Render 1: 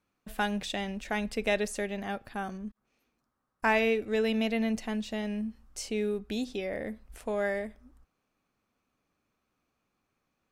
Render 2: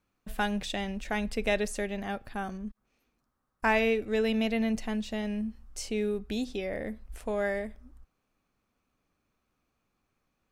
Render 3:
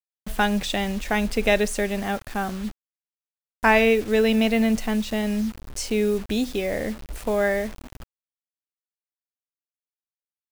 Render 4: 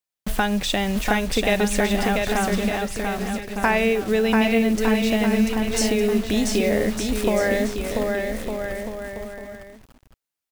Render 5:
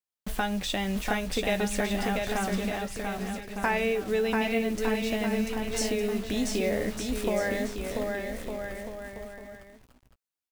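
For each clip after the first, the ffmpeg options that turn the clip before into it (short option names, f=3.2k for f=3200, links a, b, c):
-af "lowshelf=f=66:g=10"
-af "acrusher=bits=7:mix=0:aa=0.000001,volume=8dB"
-filter_complex "[0:a]acompressor=threshold=-27dB:ratio=3,asplit=2[a][b];[b]aecho=0:1:690|1208|1596|1887|2105:0.631|0.398|0.251|0.158|0.1[c];[a][c]amix=inputs=2:normalize=0,volume=7dB"
-filter_complex "[0:a]asplit=2[a][b];[b]adelay=16,volume=-10dB[c];[a][c]amix=inputs=2:normalize=0,volume=-7.5dB"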